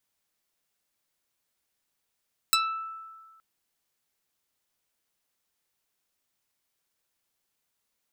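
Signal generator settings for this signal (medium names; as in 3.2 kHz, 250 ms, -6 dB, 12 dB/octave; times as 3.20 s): plucked string E6, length 0.87 s, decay 1.59 s, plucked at 0.41, medium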